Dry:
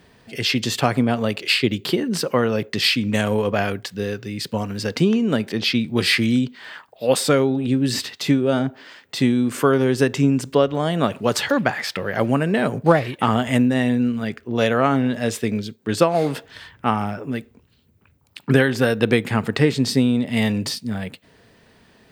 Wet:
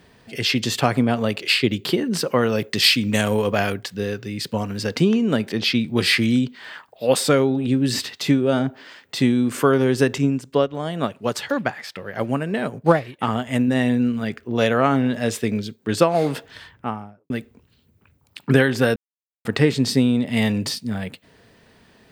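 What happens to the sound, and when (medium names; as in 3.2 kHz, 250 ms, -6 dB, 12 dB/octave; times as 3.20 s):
2.41–3.74 s: treble shelf 4.3 kHz +7 dB
10.18–13.68 s: upward expansion, over -34 dBFS
16.49–17.30 s: studio fade out
18.96–19.45 s: mute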